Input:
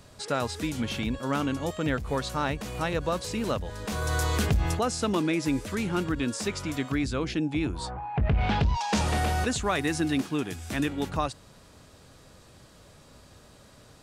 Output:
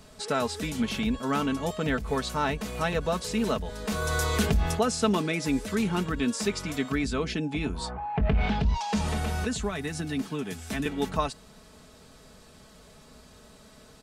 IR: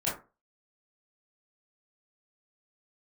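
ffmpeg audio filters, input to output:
-filter_complex "[0:a]asettb=1/sr,asplit=3[a][b][c];[a]atrim=end=8.484[d];[b]atrim=start=8.48:end=10.86,asetpts=PTS-STARTPTS,afade=t=in:d=0.004:c=qsin,afade=t=out:st=2.376:d=0.004:c=qsin,acrossover=split=200[e][f];[f]acompressor=threshold=-31dB:ratio=6[g];[e][g]amix=inputs=2:normalize=0[h];[c]atrim=start=10.856[i];[d][h]acrossfade=d=0.004:c1=hsin:c2=qsin[j];[j][i]acrossfade=d=0.004:c1=qsin:c2=hsin,aecho=1:1:4.6:0.61"

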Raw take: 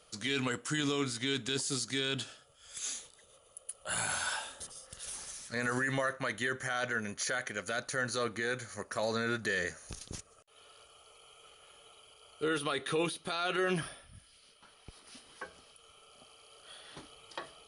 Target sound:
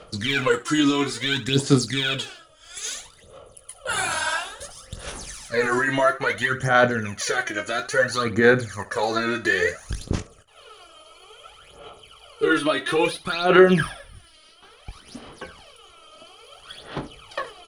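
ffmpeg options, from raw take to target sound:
-af "aemphasis=mode=reproduction:type=cd,aphaser=in_gain=1:out_gain=1:delay=3.2:decay=0.75:speed=0.59:type=sinusoidal,aecho=1:1:21|69:0.299|0.133,volume=8.5dB"

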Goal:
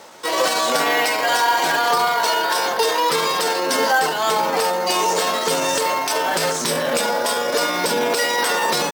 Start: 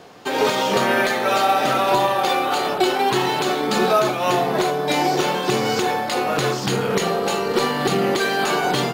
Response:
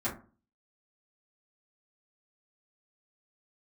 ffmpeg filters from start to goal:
-filter_complex "[0:a]bass=f=250:g=-8,treble=f=4k:g=6,asplit=2[a][b];[b]alimiter=limit=-14.5dB:level=0:latency=1:release=18,volume=-2dB[c];[a][c]amix=inputs=2:normalize=0,acrusher=bits=8:mode=log:mix=0:aa=0.000001,asetrate=53981,aresample=44100,atempo=0.816958,volume=-3dB"

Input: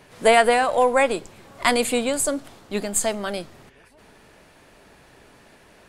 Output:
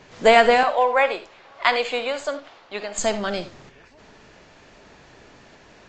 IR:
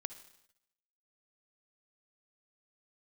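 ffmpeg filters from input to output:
-filter_complex "[0:a]asettb=1/sr,asplit=3[a][b][c];[a]atrim=end=0.634[d];[b]atrim=start=0.63:end=2.98,asetpts=PTS-STARTPTS,afade=t=in:d=0.004:c=qsin,afade=t=out:st=2.346:d=0.004:c=qsin,acrossover=split=480 4600:gain=0.126 1 0.112[e][f][g];[e][f][g]amix=inputs=3:normalize=0[h];[c]atrim=start=2.976[i];[d][h]acrossfade=d=0.004:c1=hsin:c2=qsin[j];[j][i]acrossfade=d=0.004:c1=qsin:c2=hsin[k];[1:a]atrim=start_sample=2205,afade=t=out:st=0.15:d=0.01,atrim=end_sample=7056[l];[k][l]afir=irnorm=-1:irlink=0,volume=4.5dB" -ar 16000 -c:a libvorbis -b:a 48k

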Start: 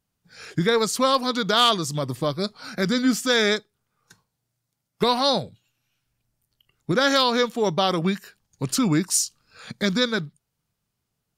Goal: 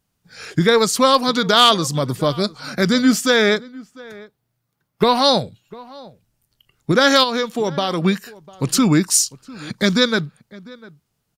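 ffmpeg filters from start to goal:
-filter_complex "[0:a]asettb=1/sr,asplit=3[a][b][c];[a]atrim=end=3.304[d];[b]atrim=start=3.3:end=5.15,asetpts=PTS-STARTPTS,afade=t=in:d=0.004:c=qsin,afade=t=out:st=1.846:d=0.004:c=qsin,equalizer=f=7.2k:t=o:w=1.7:g=-8.5[e];[c]atrim=start=5.146[f];[d][e]acrossfade=d=0.004:c1=hsin:c2=qsin[g];[g][f]acrossfade=d=0.004:c1=qsin:c2=hsin,asplit=3[h][i][j];[h]afade=t=out:st=7.23:d=0.02[k];[i]acompressor=threshold=-23dB:ratio=6,afade=t=in:st=7.23:d=0.02,afade=t=out:st=8.03:d=0.02[l];[j]afade=t=in:st=8.03:d=0.02[m];[k][l][m]amix=inputs=3:normalize=0,asplit=2[n][o];[o]adelay=699.7,volume=-21dB,highshelf=f=4k:g=-15.7[p];[n][p]amix=inputs=2:normalize=0,volume=6dB"

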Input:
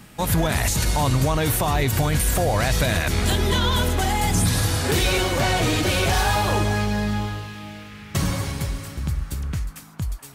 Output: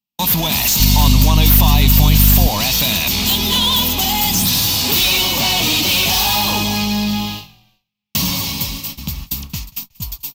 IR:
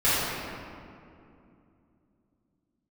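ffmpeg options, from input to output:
-filter_complex "[0:a]bass=f=250:g=-8,treble=f=4k:g=12,agate=range=-52dB:threshold=-32dB:ratio=16:detection=peak,firequalizer=gain_entry='entry(110,0);entry(210,9);entry(360,-6);entry(530,-8);entry(960,3);entry(1500,-14);entry(2600,7);entry(5200,2);entry(9600,-14);entry(14000,8)':delay=0.05:min_phase=1,asoftclip=type=tanh:threshold=-16dB,asettb=1/sr,asplit=3[a][b][c];[a]atrim=end=0.804[d];[b]atrim=start=0.8:end=2.48,asetpts=PTS-STARTPTS,afade=t=in:d=0.004:c=qsin,afade=t=out:st=1.676:d=0.004:c=qsin,aeval=exprs='val(0)+0.178*(sin(2*PI*50*n/s)+sin(2*PI*2*50*n/s)/2+sin(2*PI*3*50*n/s)/3+sin(2*PI*4*50*n/s)/4+sin(2*PI*5*50*n/s)/5)':c=same[e];[c]atrim=start=2.476[f];[d][e]acrossfade=d=0.004:c1=hsin:c2=qsin[g];[g][f]acrossfade=d=0.004:c1=qsin:c2=hsin,asplit=2[h][i];[i]asplit=2[j][k];[j]adelay=183,afreqshift=-45,volume=-24dB[l];[k]adelay=366,afreqshift=-90,volume=-32.9dB[m];[l][m]amix=inputs=2:normalize=0[n];[h][n]amix=inputs=2:normalize=0,volume=5.5dB"

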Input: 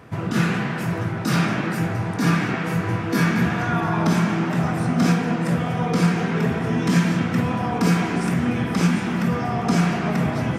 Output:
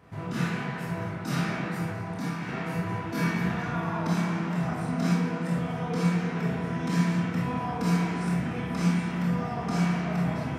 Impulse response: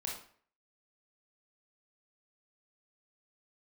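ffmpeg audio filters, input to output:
-filter_complex "[0:a]asettb=1/sr,asplit=3[a][b][c];[a]atrim=end=1.894[d];[b]atrim=start=1.89:end=2.49,asetpts=PTS-STARTPTS,afade=t=in:d=0.004:c=qsin,afade=t=out:st=0.596:d=0.004:c=qsin,acompressor=threshold=-21dB:ratio=6[e];[c]atrim=start=2.486[f];[d][e]acrossfade=d=0.004:c1=hsin:c2=qsin[g];[g][f]acrossfade=d=0.004:c1=qsin:c2=hsin[h];[1:a]atrim=start_sample=2205[i];[h][i]afir=irnorm=-1:irlink=0,volume=-8.5dB"

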